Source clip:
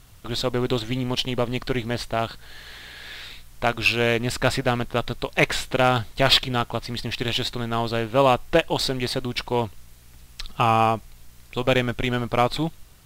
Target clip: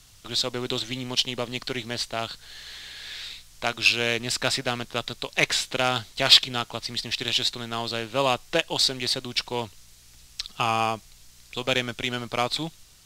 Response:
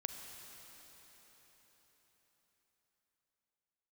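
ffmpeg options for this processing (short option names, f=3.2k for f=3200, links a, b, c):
-filter_complex "[0:a]equalizer=f=5.6k:w=0.51:g=13,acrossover=split=110|1200[a][b][c];[a]acompressor=threshold=-40dB:ratio=6[d];[d][b][c]amix=inputs=3:normalize=0,volume=-7dB"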